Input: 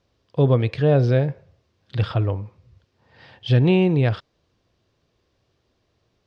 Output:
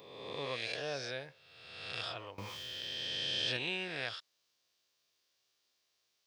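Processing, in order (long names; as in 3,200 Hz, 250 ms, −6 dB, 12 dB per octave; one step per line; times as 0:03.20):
peak hold with a rise ahead of every peak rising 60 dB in 1.34 s
first difference
0:02.38–0:03.57: envelope flattener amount 70%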